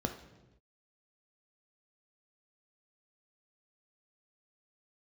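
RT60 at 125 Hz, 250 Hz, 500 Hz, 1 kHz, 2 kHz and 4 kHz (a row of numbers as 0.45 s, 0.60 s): 1.3 s, 1.2 s, 1.1 s, 0.90 s, 0.90 s, 0.85 s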